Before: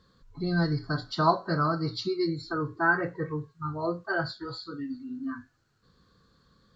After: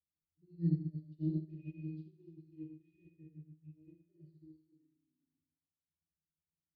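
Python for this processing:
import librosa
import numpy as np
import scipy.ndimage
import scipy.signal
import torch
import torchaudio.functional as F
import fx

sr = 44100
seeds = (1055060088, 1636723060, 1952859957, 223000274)

y = fx.overload_stage(x, sr, gain_db=29.0, at=(1.49, 4.03))
y = fx.brickwall_bandstop(y, sr, low_hz=590.0, high_hz=1800.0)
y = fx.octave_resonator(y, sr, note='D#', decay_s=0.21)
y = fx.rev_schroeder(y, sr, rt60_s=1.1, comb_ms=32, drr_db=-1.5)
y = fx.upward_expand(y, sr, threshold_db=-45.0, expansion=2.5)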